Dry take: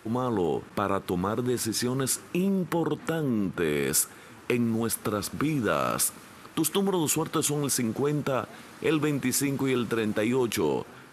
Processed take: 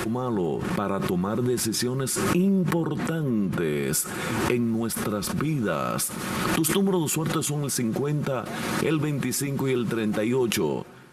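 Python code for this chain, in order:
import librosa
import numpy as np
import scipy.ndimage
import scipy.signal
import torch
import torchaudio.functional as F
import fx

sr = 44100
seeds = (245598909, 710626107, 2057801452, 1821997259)

y = fx.low_shelf(x, sr, hz=300.0, db=6.5)
y = y + 0.42 * np.pad(y, (int(5.5 * sr / 1000.0), 0))[:len(y)]
y = fx.pre_swell(y, sr, db_per_s=26.0)
y = F.gain(torch.from_numpy(y), -3.0).numpy()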